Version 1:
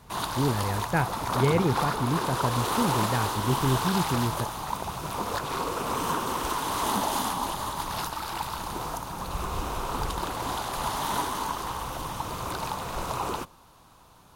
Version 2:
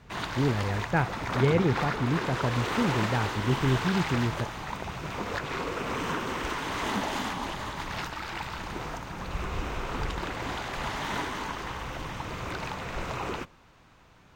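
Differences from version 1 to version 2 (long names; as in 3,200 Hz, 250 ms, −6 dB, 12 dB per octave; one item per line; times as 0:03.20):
background: add octave-band graphic EQ 1,000/2,000/4,000 Hz −8/+9/−4 dB
master: add moving average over 4 samples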